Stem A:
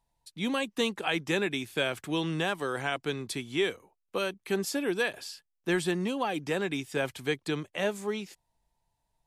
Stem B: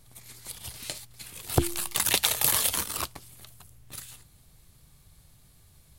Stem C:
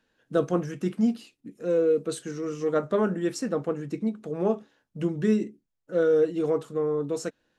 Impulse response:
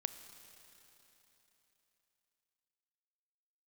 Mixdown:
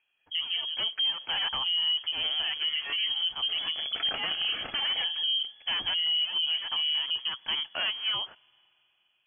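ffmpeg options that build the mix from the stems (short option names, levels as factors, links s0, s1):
-filter_complex "[0:a]highpass=140,acontrast=67,volume=15,asoftclip=hard,volume=0.0668,volume=0.891,asplit=2[s0][s1];[s1]volume=0.119[s2];[1:a]asoftclip=type=tanh:threshold=0.168,adynamicequalizer=threshold=0.00794:dfrequency=2000:dqfactor=0.96:tfrequency=2000:tqfactor=0.96:attack=5:release=100:ratio=0.375:range=1.5:mode=boostabove:tftype=bell,bandreject=f=2400:w=12,adelay=2000,volume=0.708[s3];[2:a]afwtdn=0.0224,acontrast=83,volume=0.501,asplit=2[s4][s5];[s5]apad=whole_len=408447[s6];[s0][s6]sidechaincompress=threshold=0.0178:ratio=8:attack=29:release=204[s7];[3:a]atrim=start_sample=2205[s8];[s2][s8]afir=irnorm=-1:irlink=0[s9];[s7][s3][s4][s9]amix=inputs=4:normalize=0,lowpass=f=2900:t=q:w=0.5098,lowpass=f=2900:t=q:w=0.6013,lowpass=f=2900:t=q:w=0.9,lowpass=f=2900:t=q:w=2.563,afreqshift=-3400,alimiter=limit=0.0891:level=0:latency=1:release=146"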